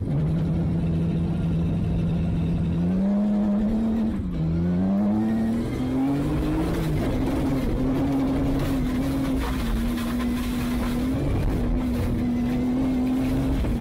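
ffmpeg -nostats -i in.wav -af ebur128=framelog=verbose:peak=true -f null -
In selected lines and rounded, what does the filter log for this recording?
Integrated loudness:
  I:         -24.4 LUFS
  Threshold: -34.4 LUFS
Loudness range:
  LRA:         2.0 LU
  Threshold: -44.5 LUFS
  LRA low:   -25.5 LUFS
  LRA high:  -23.5 LUFS
True peak:
  Peak:      -18.0 dBFS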